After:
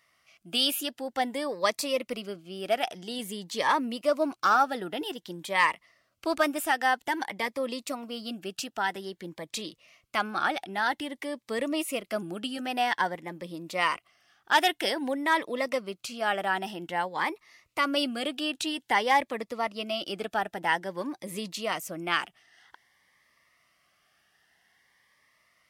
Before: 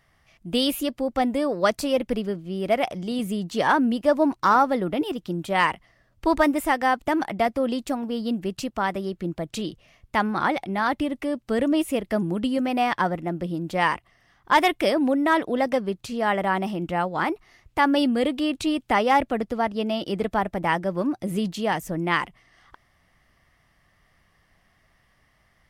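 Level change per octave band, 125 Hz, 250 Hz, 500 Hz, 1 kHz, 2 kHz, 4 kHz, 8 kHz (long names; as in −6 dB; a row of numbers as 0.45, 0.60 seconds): −13.5, −10.5, −6.5, −4.5, −2.0, +1.0, +1.5 decibels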